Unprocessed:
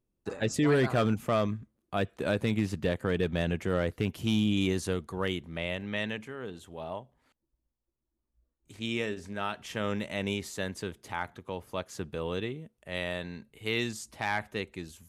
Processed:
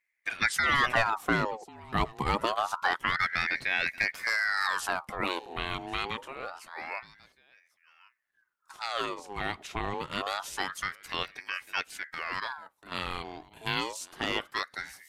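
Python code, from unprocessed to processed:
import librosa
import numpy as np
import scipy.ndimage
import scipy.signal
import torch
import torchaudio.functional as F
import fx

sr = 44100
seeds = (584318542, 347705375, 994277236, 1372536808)

y = fx.high_shelf(x, sr, hz=2900.0, db=-8.5, at=(9.66, 10.11), fade=0.02)
y = fx.hpss(y, sr, part='percussive', gain_db=6)
y = fx.high_shelf(y, sr, hz=6400.0, db=-8.5, at=(3.37, 3.86))
y = fx.transient(y, sr, attack_db=-7, sustain_db=-2, at=(11.88, 12.92))
y = y + 10.0 ** (-22.5 / 20.0) * np.pad(y, (int(1093 * sr / 1000.0), 0))[:len(y)]
y = fx.ring_lfo(y, sr, carrier_hz=1300.0, swing_pct=60, hz=0.26)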